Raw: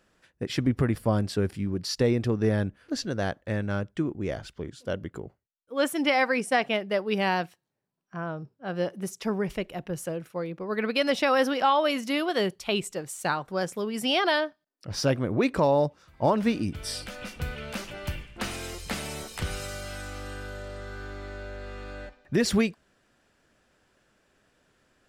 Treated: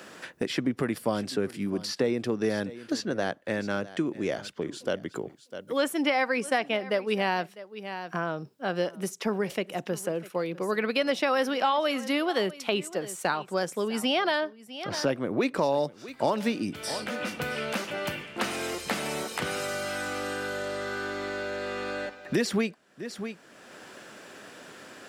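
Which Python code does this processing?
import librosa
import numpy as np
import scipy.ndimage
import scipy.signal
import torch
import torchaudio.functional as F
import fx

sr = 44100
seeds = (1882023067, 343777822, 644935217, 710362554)

y = scipy.signal.sosfilt(scipy.signal.butter(2, 210.0, 'highpass', fs=sr, output='sos'), x)
y = y + 10.0 ** (-20.5 / 20.0) * np.pad(y, (int(651 * sr / 1000.0), 0))[:len(y)]
y = fx.band_squash(y, sr, depth_pct=70)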